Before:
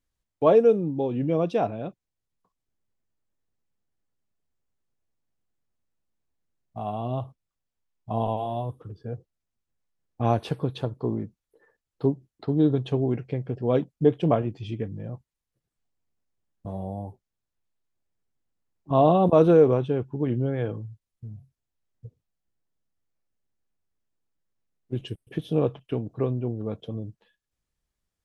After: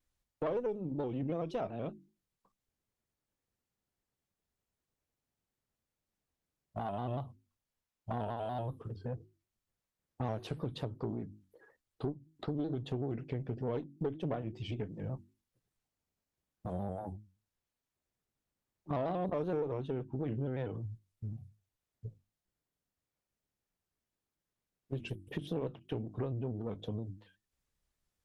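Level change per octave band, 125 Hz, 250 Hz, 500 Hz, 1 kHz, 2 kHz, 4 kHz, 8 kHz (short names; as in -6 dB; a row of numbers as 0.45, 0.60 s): -10.5 dB, -12.5 dB, -14.5 dB, -13.0 dB, -8.0 dB, -8.0 dB, n/a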